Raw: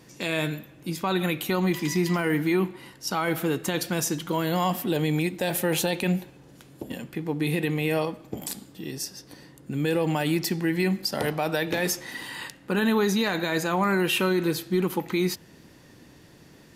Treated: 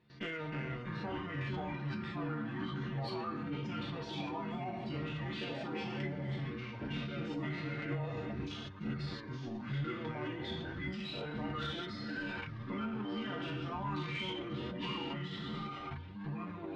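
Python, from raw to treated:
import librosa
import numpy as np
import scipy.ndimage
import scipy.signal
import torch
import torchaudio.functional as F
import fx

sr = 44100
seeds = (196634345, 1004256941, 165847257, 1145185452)

p1 = fx.spec_trails(x, sr, decay_s=1.85)
p2 = fx.notch_comb(p1, sr, f0_hz=270.0)
p3 = fx.backlash(p2, sr, play_db=-24.0)
p4 = p2 + (p3 * 10.0 ** (-5.0 / 20.0))
p5 = fx.level_steps(p4, sr, step_db=16)
p6 = p5 + fx.echo_heads(p5, sr, ms=234, heads='all three', feedback_pct=67, wet_db=-24, dry=0)
p7 = fx.dereverb_blind(p6, sr, rt60_s=1.6)
p8 = fx.echo_pitch(p7, sr, ms=260, semitones=-4, count=2, db_per_echo=-3.0)
p9 = scipy.signal.sosfilt(scipy.signal.butter(4, 4500.0, 'lowpass', fs=sr, output='sos'), p8)
p10 = fx.stiff_resonator(p9, sr, f0_hz=69.0, decay_s=0.23, stiffness=0.008)
p11 = 10.0 ** (-30.5 / 20.0) * np.tanh(p10 / 10.0 ** (-30.5 / 20.0))
p12 = fx.formant_shift(p11, sr, semitones=-4)
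y = p12 * 10.0 ** (2.0 / 20.0)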